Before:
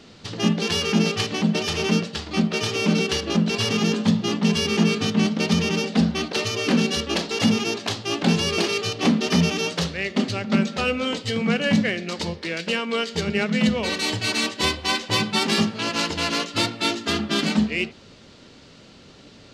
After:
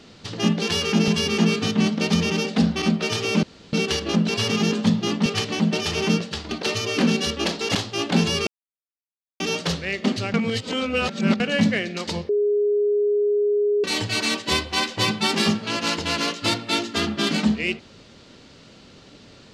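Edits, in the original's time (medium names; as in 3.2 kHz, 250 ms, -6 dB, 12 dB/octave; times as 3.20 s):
1.08–2.33 s: swap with 4.47–6.21 s
2.94 s: insert room tone 0.30 s
7.45–7.87 s: delete
8.59–9.52 s: mute
10.46–11.52 s: reverse
12.41–13.96 s: bleep 413 Hz -17 dBFS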